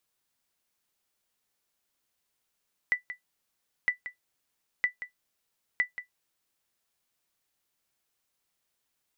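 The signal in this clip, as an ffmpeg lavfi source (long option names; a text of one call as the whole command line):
ffmpeg -f lavfi -i "aevalsrc='0.158*(sin(2*PI*1980*mod(t,0.96))*exp(-6.91*mod(t,0.96)/0.12)+0.237*sin(2*PI*1980*max(mod(t,0.96)-0.18,0))*exp(-6.91*max(mod(t,0.96)-0.18,0)/0.12))':duration=3.84:sample_rate=44100" out.wav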